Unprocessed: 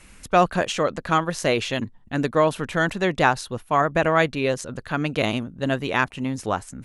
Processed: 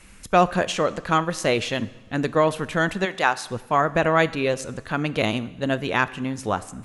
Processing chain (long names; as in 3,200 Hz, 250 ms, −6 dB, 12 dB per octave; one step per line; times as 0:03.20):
0:03.04–0:03.47: high-pass filter 1,300 Hz → 380 Hz 6 dB per octave
coupled-rooms reverb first 0.96 s, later 3.1 s, from −18 dB, DRR 15 dB